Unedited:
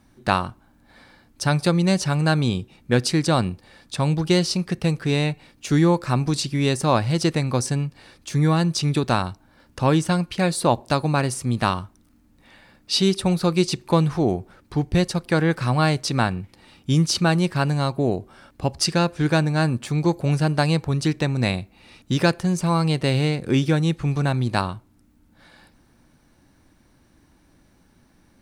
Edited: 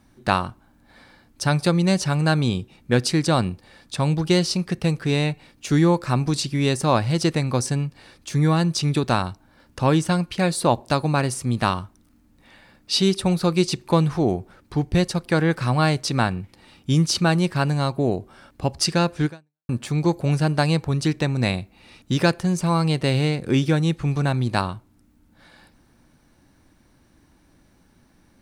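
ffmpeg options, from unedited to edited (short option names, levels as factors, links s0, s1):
-filter_complex "[0:a]asplit=2[s0][s1];[s0]atrim=end=19.69,asetpts=PTS-STARTPTS,afade=t=out:st=19.25:d=0.44:c=exp[s2];[s1]atrim=start=19.69,asetpts=PTS-STARTPTS,afade=t=in:d=0.004:c=hsin[s3];[s2][s3]concat=n=2:v=0:a=1"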